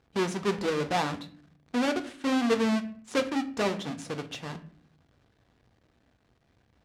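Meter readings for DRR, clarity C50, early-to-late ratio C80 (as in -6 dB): 7.0 dB, 14.5 dB, 18.5 dB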